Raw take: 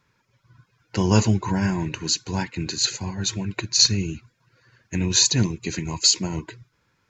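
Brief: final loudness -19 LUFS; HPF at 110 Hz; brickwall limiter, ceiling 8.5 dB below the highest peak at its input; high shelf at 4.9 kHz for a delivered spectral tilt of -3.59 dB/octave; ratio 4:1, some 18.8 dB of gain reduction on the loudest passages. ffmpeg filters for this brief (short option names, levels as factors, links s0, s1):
-af "highpass=110,highshelf=f=4900:g=6.5,acompressor=threshold=0.0224:ratio=4,volume=7.5,alimiter=limit=0.422:level=0:latency=1"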